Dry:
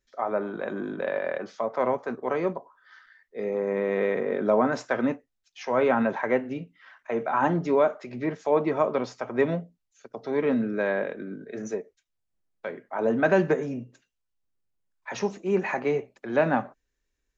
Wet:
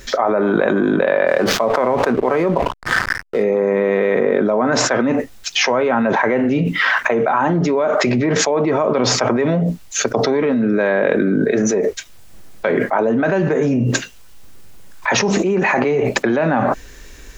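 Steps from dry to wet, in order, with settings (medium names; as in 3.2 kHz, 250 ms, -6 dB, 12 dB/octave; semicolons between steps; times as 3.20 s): 1.27–3.43 s: hysteresis with a dead band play -47 dBFS; level flattener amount 100%; trim +1 dB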